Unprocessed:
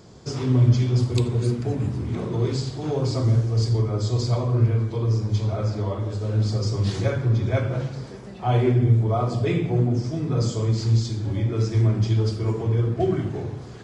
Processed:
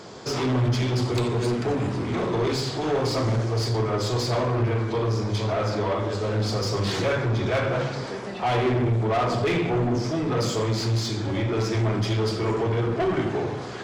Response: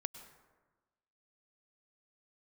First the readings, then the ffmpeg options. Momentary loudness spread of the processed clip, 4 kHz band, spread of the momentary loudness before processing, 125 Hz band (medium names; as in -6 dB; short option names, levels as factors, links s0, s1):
4 LU, +5.5 dB, 8 LU, -5.5 dB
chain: -filter_complex "[0:a]asplit=2[s0][s1];[s1]highpass=f=720:p=1,volume=25.1,asoftclip=type=tanh:threshold=0.447[s2];[s0][s2]amix=inputs=2:normalize=0,lowpass=f=2900:p=1,volume=0.501,bandreject=f=74.89:t=h:w=4,bandreject=f=149.78:t=h:w=4,bandreject=f=224.67:t=h:w=4,bandreject=f=299.56:t=h:w=4,bandreject=f=374.45:t=h:w=4,bandreject=f=449.34:t=h:w=4,bandreject=f=524.23:t=h:w=4,bandreject=f=599.12:t=h:w=4,bandreject=f=674.01:t=h:w=4,bandreject=f=748.9:t=h:w=4,bandreject=f=823.79:t=h:w=4,bandreject=f=898.68:t=h:w=4,bandreject=f=973.57:t=h:w=4,bandreject=f=1048.46:t=h:w=4,bandreject=f=1123.35:t=h:w=4,bandreject=f=1198.24:t=h:w=4,bandreject=f=1273.13:t=h:w=4,bandreject=f=1348.02:t=h:w=4,bandreject=f=1422.91:t=h:w=4,bandreject=f=1497.8:t=h:w=4,bandreject=f=1572.69:t=h:w=4,bandreject=f=1647.58:t=h:w=4,bandreject=f=1722.47:t=h:w=4,bandreject=f=1797.36:t=h:w=4,bandreject=f=1872.25:t=h:w=4,bandreject=f=1947.14:t=h:w=4,bandreject=f=2022.03:t=h:w=4,bandreject=f=2096.92:t=h:w=4,bandreject=f=2171.81:t=h:w=4,bandreject=f=2246.7:t=h:w=4,bandreject=f=2321.59:t=h:w=4,bandreject=f=2396.48:t=h:w=4,bandreject=f=2471.37:t=h:w=4,bandreject=f=2546.26:t=h:w=4,bandreject=f=2621.15:t=h:w=4,volume=0.422"